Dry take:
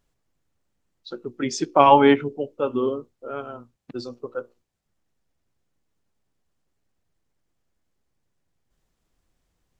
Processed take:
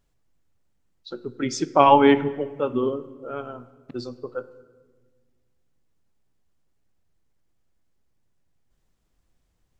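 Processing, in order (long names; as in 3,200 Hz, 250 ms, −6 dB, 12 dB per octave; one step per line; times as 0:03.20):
low-shelf EQ 160 Hz +4 dB
on a send: convolution reverb RT60 1.5 s, pre-delay 16 ms, DRR 15 dB
on the sum: level −1 dB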